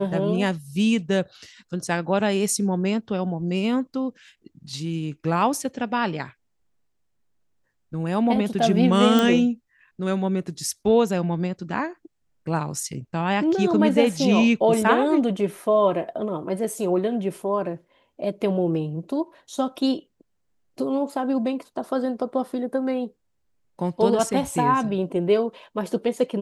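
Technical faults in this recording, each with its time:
9.19 pop

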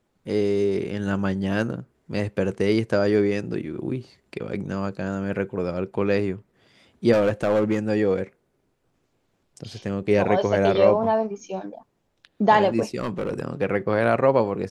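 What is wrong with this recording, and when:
7.12–7.79 clipped -15.5 dBFS
11.4 gap 2.2 ms
12.98–13.4 clipped -21.5 dBFS

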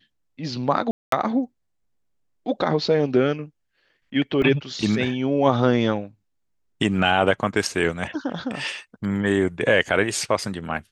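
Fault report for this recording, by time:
0.91–1.12 gap 0.213 s
4.42 gap 2.1 ms

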